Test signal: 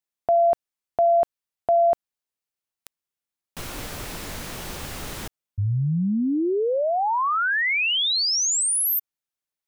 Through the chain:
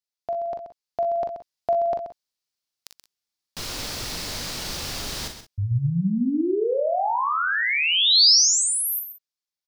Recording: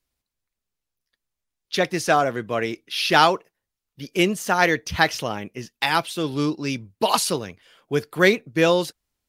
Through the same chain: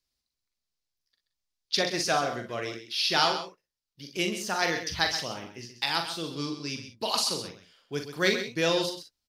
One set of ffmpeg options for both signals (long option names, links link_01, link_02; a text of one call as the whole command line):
ffmpeg -i in.wav -filter_complex "[0:a]equalizer=frequency=4800:width=1.3:gain=11.5,asplit=2[link_01][link_02];[link_02]aecho=0:1:130:0.299[link_03];[link_01][link_03]amix=inputs=2:normalize=0,dynaudnorm=framelen=190:gausssize=11:maxgain=6.5dB,asplit=2[link_04][link_05];[link_05]aecho=0:1:42|59:0.447|0.266[link_06];[link_04][link_06]amix=inputs=2:normalize=0,volume=-8dB" out.wav